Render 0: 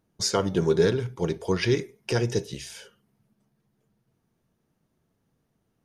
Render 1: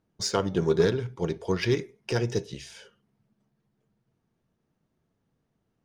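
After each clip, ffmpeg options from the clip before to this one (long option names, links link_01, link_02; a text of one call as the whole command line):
ffmpeg -i in.wav -af "adynamicsmooth=sensitivity=4:basefreq=7600,aeval=exprs='0.335*(cos(1*acos(clip(val(0)/0.335,-1,1)))-cos(1*PI/2))+0.0266*(cos(3*acos(clip(val(0)/0.335,-1,1)))-cos(3*PI/2))':channel_layout=same" out.wav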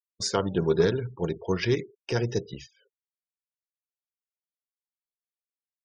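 ffmpeg -i in.wav -af "afftfilt=real='re*gte(hypot(re,im),0.00891)':imag='im*gte(hypot(re,im),0.00891)':win_size=1024:overlap=0.75,agate=range=-13dB:threshold=-44dB:ratio=16:detection=peak" out.wav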